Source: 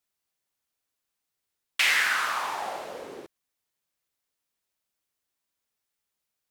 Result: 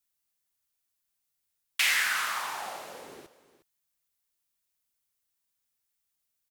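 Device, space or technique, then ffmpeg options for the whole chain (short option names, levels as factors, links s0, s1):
smiley-face EQ: -filter_complex "[0:a]lowshelf=f=83:g=6.5,equalizer=f=440:t=o:w=1.8:g=-4.5,highshelf=f=6600:g=8.5,asettb=1/sr,asplit=3[s0][s1][s2];[s0]atrim=end=2.264[s3];[s1]atrim=start=2.26:end=3.07,asetpts=PTS-STARTPTS,afade=t=in:d=0.004:c=qsin,afade=t=out:st=0.806:d=0.004:c=qsin,highpass=110[s4];[s2]atrim=start=3.066[s5];[s3][s4]acrossfade=d=0.004:c1=hsin:c2=qsin[s6];[s6][s5]acrossfade=d=0.004:c1=qsin:c2=hsin,aecho=1:1:360:0.158,volume=0.668"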